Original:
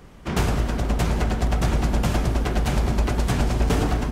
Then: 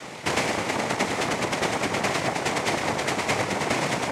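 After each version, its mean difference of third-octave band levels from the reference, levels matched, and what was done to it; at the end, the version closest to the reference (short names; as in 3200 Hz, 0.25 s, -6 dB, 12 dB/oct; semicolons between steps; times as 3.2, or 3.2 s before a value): 6.0 dB: noise vocoder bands 2; compressor 3:1, threshold -37 dBFS, peak gain reduction 14.5 dB; bell 2100 Hz +14 dB 0.83 oct; gain +9 dB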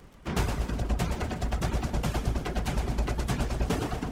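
1.5 dB: crackle 26/s -35 dBFS; reverb removal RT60 1.8 s; split-band echo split 390 Hz, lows 0.325 s, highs 0.122 s, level -7 dB; gain -5 dB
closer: second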